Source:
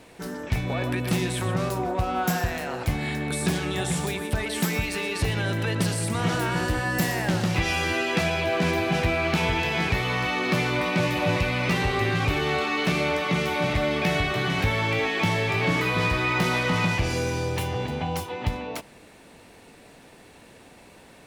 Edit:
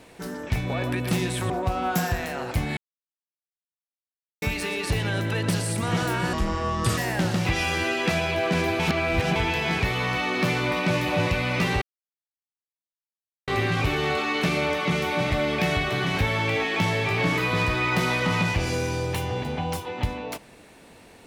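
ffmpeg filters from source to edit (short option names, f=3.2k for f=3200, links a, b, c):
-filter_complex "[0:a]asplit=9[a][b][c][d][e][f][g][h][i];[a]atrim=end=1.502[j];[b]atrim=start=1.818:end=3.09,asetpts=PTS-STARTPTS,afade=t=out:st=1.268:d=0.004:c=hsin[k];[c]atrim=start=3.09:end=4.74,asetpts=PTS-STARTPTS,volume=0[l];[d]atrim=start=4.74:end=6.654,asetpts=PTS-STARTPTS,afade=t=in:d=0.004:c=hsin[m];[e]atrim=start=6.65:end=7.07,asetpts=PTS-STARTPTS,asetrate=28665,aresample=44100,atrim=end_sample=28495,asetpts=PTS-STARTPTS[n];[f]atrim=start=7.066:end=8.892[o];[g]atrim=start=8.888:end=9.452,asetpts=PTS-STARTPTS,areverse[p];[h]atrim=start=9.448:end=11.91,asetpts=PTS-STARTPTS,afade=t=out:st=2.458:d=0.004:c=hsin,apad=pad_dur=1.66[q];[i]atrim=start=11.91,asetpts=PTS-STARTPTS,afade=t=in:d=0.004:c=hsin[r];[k][l][m]concat=n=3:v=0:a=1[s];[j][s]acrossfade=d=0.004:c1=hsin:c2=hsin[t];[t][n]acrossfade=d=0.004:c1=hsin:c2=hsin[u];[u][o]acrossfade=d=0.004:c1=hsin:c2=hsin[v];[v][p]acrossfade=d=0.004:c1=hsin:c2=hsin[w];[q][r]concat=n=2:v=0:a=1[x];[w][x]acrossfade=d=0.004:c1=hsin:c2=hsin"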